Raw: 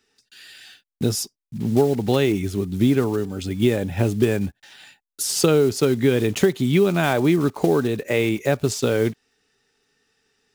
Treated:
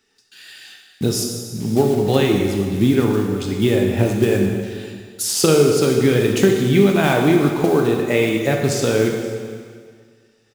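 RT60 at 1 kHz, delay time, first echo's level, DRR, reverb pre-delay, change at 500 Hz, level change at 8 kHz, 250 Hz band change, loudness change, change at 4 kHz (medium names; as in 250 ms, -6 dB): 1.8 s, 525 ms, -21.0 dB, 1.0 dB, 7 ms, +3.5 dB, +4.0 dB, +3.5 dB, +3.5 dB, +4.0 dB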